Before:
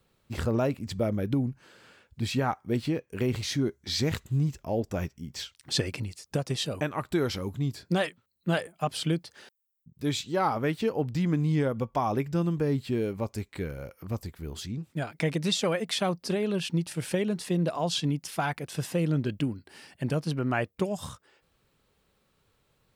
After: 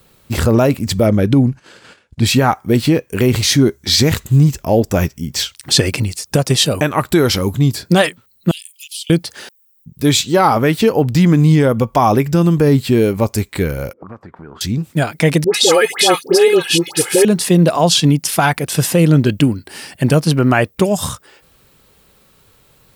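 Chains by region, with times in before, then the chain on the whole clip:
1.06–2.26 LPF 8100 Hz + gate -56 dBFS, range -13 dB
8.51–9.1 steep high-pass 2700 Hz 48 dB/oct + compressor 2.5:1, threshold -49 dBFS
13.93–14.61 HPF 160 Hz + compressor 4:1, threshold -49 dBFS + envelope low-pass 280–1600 Hz up, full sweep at -47 dBFS
15.44–17.25 HPF 230 Hz + comb 2.4 ms, depth 96% + dispersion highs, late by 0.1 s, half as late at 1100 Hz
whole clip: high shelf 7600 Hz +9.5 dB; maximiser +17 dB; gain -1 dB

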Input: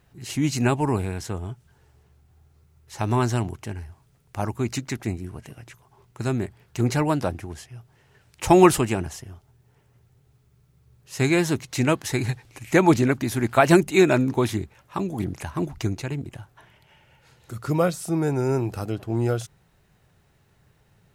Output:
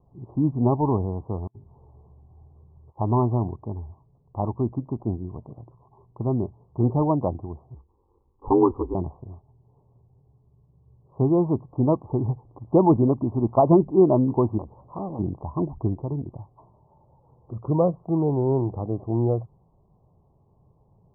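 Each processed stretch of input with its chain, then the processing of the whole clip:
1.47–2.98 notches 50/100/150/200/250/300/350/400 Hz + negative-ratio compressor -48 dBFS, ratio -0.5
7.74–8.95 ring modulator 50 Hz + fixed phaser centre 650 Hz, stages 6
14.58–15.19 G.711 law mismatch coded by mu + core saturation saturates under 1600 Hz
whole clip: steep low-pass 1100 Hz 96 dB/oct; maximiser +7 dB; gain -6 dB

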